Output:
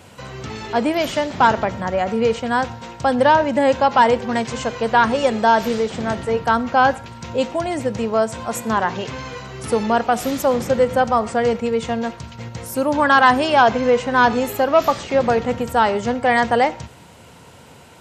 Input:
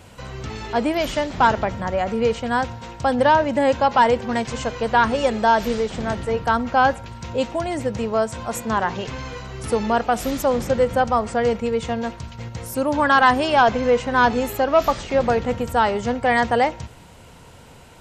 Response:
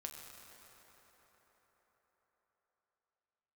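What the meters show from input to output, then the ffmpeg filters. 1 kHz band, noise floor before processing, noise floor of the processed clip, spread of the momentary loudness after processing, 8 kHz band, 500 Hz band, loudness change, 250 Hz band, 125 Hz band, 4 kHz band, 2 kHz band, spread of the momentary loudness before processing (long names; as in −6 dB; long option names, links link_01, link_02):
+2.0 dB, −45 dBFS, −44 dBFS, 12 LU, +2.0 dB, +2.0 dB, +2.0 dB, +2.0 dB, −0.5 dB, +2.0 dB, +2.0 dB, 12 LU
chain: -filter_complex "[0:a]highpass=100,asplit=2[link_01][link_02];[1:a]atrim=start_sample=2205,afade=type=out:start_time=0.18:duration=0.01,atrim=end_sample=8379[link_03];[link_02][link_03]afir=irnorm=-1:irlink=0,volume=-6.5dB[link_04];[link_01][link_04]amix=inputs=2:normalize=0"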